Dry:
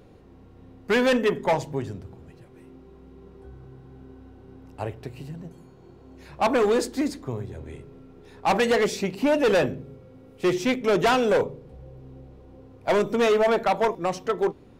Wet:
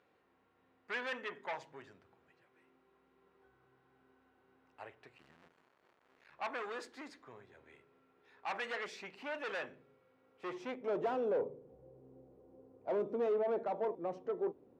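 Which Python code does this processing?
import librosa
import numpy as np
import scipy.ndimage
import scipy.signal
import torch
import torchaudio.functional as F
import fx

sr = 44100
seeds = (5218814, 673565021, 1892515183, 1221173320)

y = fx.cycle_switch(x, sr, every=2, mode='muted', at=(5.17, 6.34))
y = 10.0 ** (-19.5 / 20.0) * np.tanh(y / 10.0 ** (-19.5 / 20.0))
y = fx.filter_sweep_bandpass(y, sr, from_hz=1700.0, to_hz=460.0, start_s=10.18, end_s=11.15, q=1.1)
y = F.gain(torch.from_numpy(y), -8.5).numpy()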